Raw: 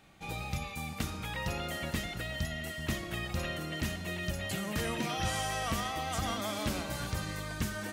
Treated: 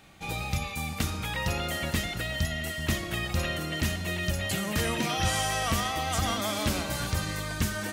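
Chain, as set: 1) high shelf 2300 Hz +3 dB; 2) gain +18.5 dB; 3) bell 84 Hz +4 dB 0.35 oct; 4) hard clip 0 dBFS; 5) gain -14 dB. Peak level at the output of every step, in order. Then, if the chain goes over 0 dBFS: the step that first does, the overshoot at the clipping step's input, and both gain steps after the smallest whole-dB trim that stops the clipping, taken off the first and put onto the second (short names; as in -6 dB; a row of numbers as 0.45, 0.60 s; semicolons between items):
-22.0, -3.5, -2.5, -2.5, -16.5 dBFS; no overload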